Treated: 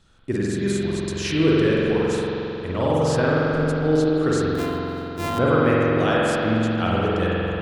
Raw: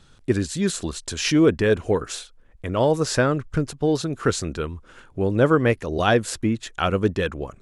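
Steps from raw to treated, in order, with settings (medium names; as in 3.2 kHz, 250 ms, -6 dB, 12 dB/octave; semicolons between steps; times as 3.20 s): 4.54–5.39 s: sorted samples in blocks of 128 samples; spring tank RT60 3.4 s, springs 45 ms, chirp 35 ms, DRR -6.5 dB; trim -6 dB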